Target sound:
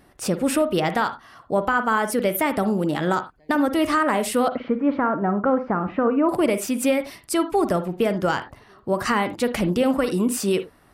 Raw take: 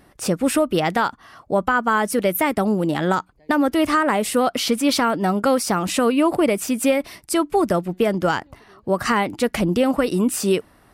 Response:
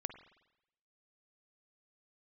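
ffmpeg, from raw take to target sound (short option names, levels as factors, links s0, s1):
-filter_complex "[0:a]asettb=1/sr,asplit=3[s0][s1][s2];[s0]atrim=end=4.484[s3];[s1]atrim=start=4.48:end=6.29,asetpts=PTS-STARTPTS,afade=t=in:d=0.004:c=qsin,afade=t=out:st=1.806:d=0.004:c=qsin,lowpass=f=1700:w=0.5412,lowpass=f=1700:w=1.3066[s4];[s2]atrim=start=6.286[s5];[s3][s4]acrossfade=d=0.004:c1=hsin:c2=qsin[s6];[s6][s5]acrossfade=d=0.004:c1=qsin:c2=hsin[s7];[1:a]atrim=start_sample=2205,atrim=end_sample=4410[s8];[s7][s8]afir=irnorm=-1:irlink=0"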